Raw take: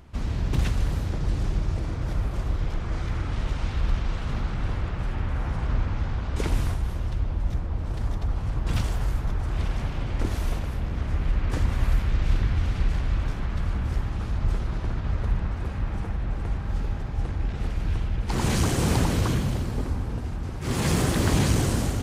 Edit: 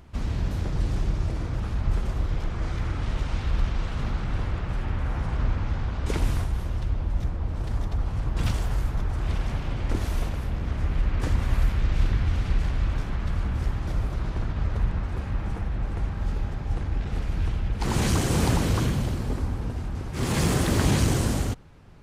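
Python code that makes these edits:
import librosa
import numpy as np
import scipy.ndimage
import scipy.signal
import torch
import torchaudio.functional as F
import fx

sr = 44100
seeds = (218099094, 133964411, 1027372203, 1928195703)

y = fx.edit(x, sr, fx.cut(start_s=0.51, length_s=0.48),
    fx.swap(start_s=2.08, length_s=0.27, other_s=14.17, other_length_s=0.45), tone=tone)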